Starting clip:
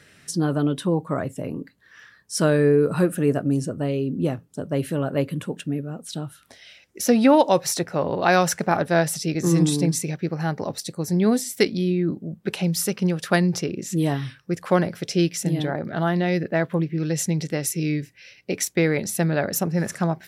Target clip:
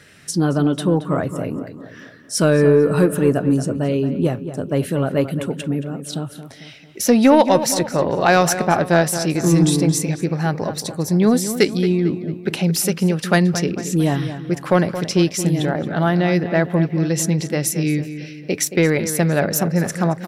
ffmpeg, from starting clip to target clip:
-filter_complex "[0:a]acontrast=44,asplit=2[a][b];[b]adelay=224,lowpass=f=3k:p=1,volume=-11dB,asplit=2[c][d];[d]adelay=224,lowpass=f=3k:p=1,volume=0.5,asplit=2[e][f];[f]adelay=224,lowpass=f=3k:p=1,volume=0.5,asplit=2[g][h];[h]adelay=224,lowpass=f=3k:p=1,volume=0.5,asplit=2[i][j];[j]adelay=224,lowpass=f=3k:p=1,volume=0.5[k];[a][c][e][g][i][k]amix=inputs=6:normalize=0,volume=-1dB"

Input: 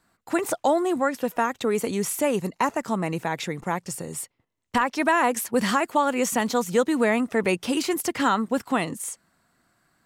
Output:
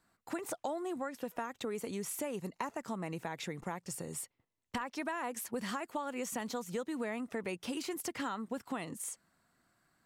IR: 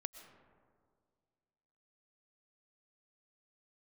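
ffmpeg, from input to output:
-af "acompressor=threshold=-29dB:ratio=4,volume=-7dB"

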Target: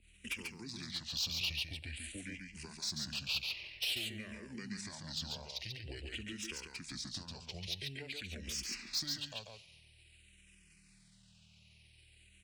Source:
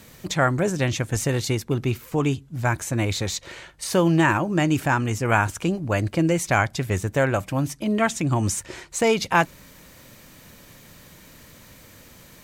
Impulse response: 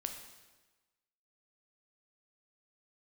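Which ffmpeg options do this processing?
-filter_complex "[0:a]agate=range=-33dB:threshold=-35dB:ratio=3:detection=peak,aeval=exprs='val(0)+0.00447*(sin(2*PI*60*n/s)+sin(2*PI*2*60*n/s)/2+sin(2*PI*3*60*n/s)/3+sin(2*PI*4*60*n/s)/4+sin(2*PI*5*60*n/s)/5)':c=same,bass=f=250:g=-9,treble=f=4k:g=-4,acompressor=threshold=-32dB:ratio=5,highshelf=f=2.7k:t=q:w=3:g=13,asetrate=28595,aresample=44100,atempo=1.54221,acrossover=split=180|3000[a][b][c];[b]acompressor=threshold=-43dB:ratio=2[d];[a][d][c]amix=inputs=3:normalize=0,asoftclip=type=tanh:threshold=-22dB,aecho=1:1:140:0.631,asplit=2[e][f];[1:a]atrim=start_sample=2205[g];[f][g]afir=irnorm=-1:irlink=0,volume=-16.5dB[h];[e][h]amix=inputs=2:normalize=0,asplit=2[i][j];[j]afreqshift=-0.49[k];[i][k]amix=inputs=2:normalize=1,volume=-7.5dB"

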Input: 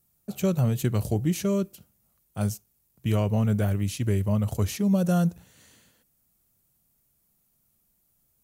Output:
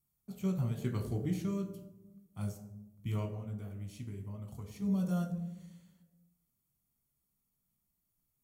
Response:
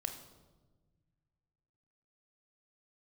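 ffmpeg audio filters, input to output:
-filter_complex "[0:a]deesser=0.7,asettb=1/sr,asplit=3[a][b][c];[a]atrim=end=0.714[d];[b]atrim=start=0.71:end=1.41,asetpts=PTS-STARTPTS,afade=t=in:d=0.004:c=qsin,afade=t=out:st=0.696:d=0.004:c=qsin,equalizer=f=400:t=o:w=0.67:g=5,equalizer=f=1.6k:t=o:w=0.67:g=6,equalizer=f=4k:t=o:w=0.67:g=4[e];[c]atrim=start=1.406[f];[d][e]acrossfade=d=0.004:c1=hsin:c2=qsin[g];[g][f]acrossfade=d=0.004:c1=qsin:c2=hsin,asettb=1/sr,asplit=3[h][i][j];[h]atrim=end=3.254[k];[i]atrim=start=3.25:end=4.82,asetpts=PTS-STARTPTS,afade=t=in:d=0.004:c=qsin,afade=t=out:st=1.566:d=0.004:c=qsin,acompressor=threshold=-30dB:ratio=6[l];[j]atrim=start=4.816[m];[k][l]acrossfade=d=0.004:c1=hsin:c2=qsin[n];[n][m]acrossfade=d=0.004:c1=qsin:c2=hsin[o];[1:a]atrim=start_sample=2205,asetrate=74970,aresample=44100[p];[o][p]afir=irnorm=-1:irlink=0,volume=-7.5dB"

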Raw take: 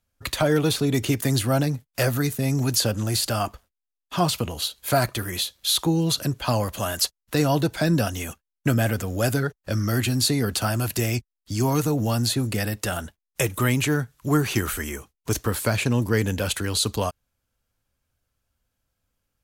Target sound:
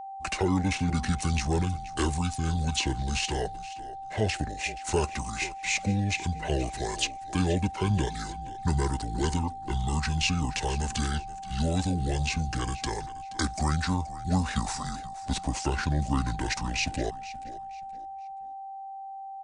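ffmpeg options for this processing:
-filter_complex "[0:a]asetrate=26990,aresample=44100,atempo=1.63392,asplit=4[a][b][c][d];[b]adelay=476,afreqshift=-39,volume=-16dB[e];[c]adelay=952,afreqshift=-78,volume=-26.5dB[f];[d]adelay=1428,afreqshift=-117,volume=-36.9dB[g];[a][e][f][g]amix=inputs=4:normalize=0,aeval=exprs='val(0)+0.0251*sin(2*PI*780*n/s)':c=same,volume=-5dB"

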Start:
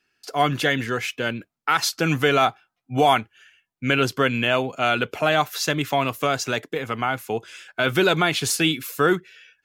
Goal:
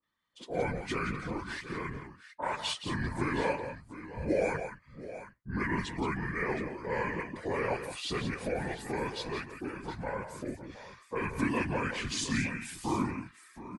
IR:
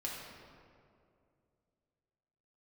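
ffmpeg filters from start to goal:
-filter_complex "[0:a]asplit=2[a][b];[b]aecho=0:1:121|503:0.335|0.2[c];[a][c]amix=inputs=2:normalize=0,afftfilt=real='hypot(re,im)*cos(2*PI*random(0))':imag='hypot(re,im)*sin(2*PI*random(1))':win_size=512:overlap=0.75,asetrate=30870,aresample=44100,acrossover=split=1000[d][e];[e]adelay=30[f];[d][f]amix=inputs=2:normalize=0,volume=-5.5dB"

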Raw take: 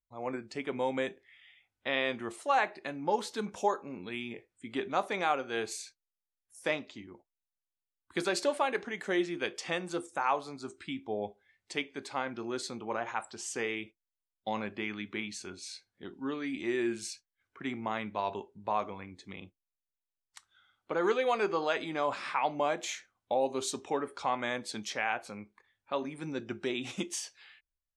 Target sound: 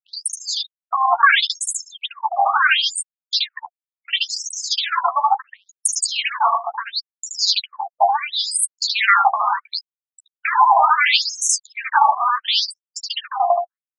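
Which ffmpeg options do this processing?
-filter_complex "[0:a]afftfilt=real='re*gte(hypot(re,im),0.00891)':imag='im*gte(hypot(re,im),0.00891)':win_size=1024:overlap=0.75,aecho=1:1:149:0.596,acompressor=threshold=-38dB:ratio=12,agate=range=-33dB:threshold=-55dB:ratio=3:detection=peak,asplit=2[a][b];[b]adelay=23,volume=-7dB[c];[a][c]amix=inputs=2:normalize=0,asetrate=88200,aresample=44100,alimiter=level_in=35dB:limit=-1dB:release=50:level=0:latency=1,afftfilt=real='re*between(b*sr/1024,840*pow(7900/840,0.5+0.5*sin(2*PI*0.72*pts/sr))/1.41,840*pow(7900/840,0.5+0.5*sin(2*PI*0.72*pts/sr))*1.41)':imag='im*between(b*sr/1024,840*pow(7900/840,0.5+0.5*sin(2*PI*0.72*pts/sr))/1.41,840*pow(7900/840,0.5+0.5*sin(2*PI*0.72*pts/sr))*1.41)':win_size=1024:overlap=0.75"

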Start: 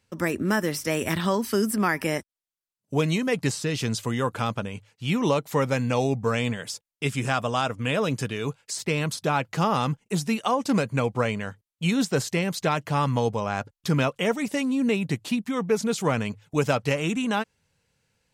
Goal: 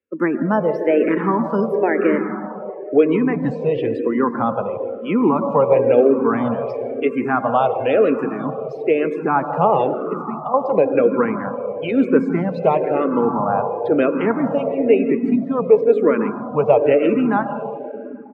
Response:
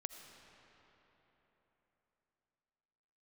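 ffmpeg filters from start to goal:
-filter_complex "[0:a]asettb=1/sr,asplit=3[a][b][c];[a]atrim=end=10.054[d];[b]atrim=start=10.05:end=10.54,asetpts=PTS-STARTPTS,afade=t=in:d=0.004:c=qsin,afade=t=out:st=0.486:d=0.004:c=qsin,acompressor=threshold=-32dB:ratio=12[e];[c]atrim=start=10.536[f];[d][e]acrossfade=d=0.004:c1=hsin:c2=qsin[g];[g][f]acrossfade=d=0.004:c1=qsin:c2=hsin,asplit=2[h][i];[i]adelay=163.3,volume=-14dB,highshelf=f=4k:g=-3.67[j];[h][j]amix=inputs=2:normalize=0[k];[1:a]atrim=start_sample=2205,asetrate=37926,aresample=44100[l];[k][l]afir=irnorm=-1:irlink=0,acontrast=83,acrossover=split=280 3200:gain=0.0891 1 0.224[m][n][o];[m][n][o]amix=inputs=3:normalize=0,afftdn=nr=19:nf=-31,tiltshelf=f=1.1k:g=9,asplit=2[p][q];[q]afreqshift=-1[r];[p][r]amix=inputs=2:normalize=1,volume=4.5dB"

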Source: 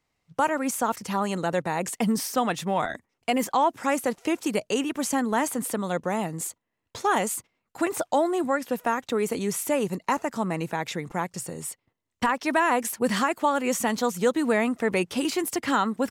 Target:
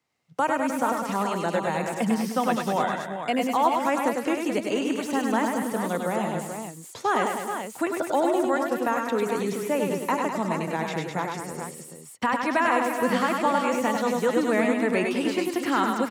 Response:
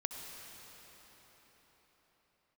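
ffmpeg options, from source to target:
-filter_complex "[0:a]acrossover=split=190|1600|5600[a][b][c][d];[d]aeval=exprs='0.0355*(abs(mod(val(0)/0.0355+3,4)-2)-1)':c=same[e];[a][b][c][e]amix=inputs=4:normalize=0,highpass=120,aecho=1:1:93|101|203|306|395|431:0.282|0.562|0.376|0.188|0.141|0.398,acrossover=split=3300[f][g];[g]acompressor=threshold=-39dB:ratio=4:attack=1:release=60[h];[f][h]amix=inputs=2:normalize=0,volume=-1dB"

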